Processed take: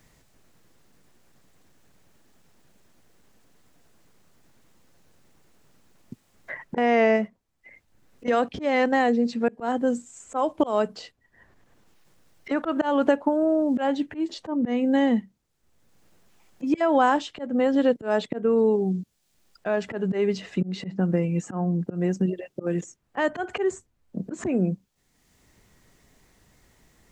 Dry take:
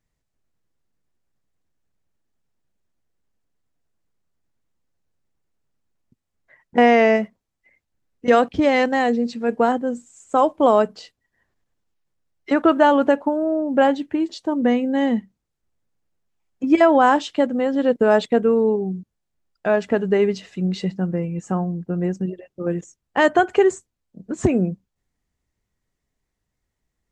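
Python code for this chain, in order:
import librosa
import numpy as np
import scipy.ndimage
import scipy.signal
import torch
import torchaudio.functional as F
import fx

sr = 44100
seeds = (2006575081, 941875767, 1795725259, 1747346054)

y = fx.auto_swell(x, sr, attack_ms=284.0)
y = fx.band_squash(y, sr, depth_pct=70)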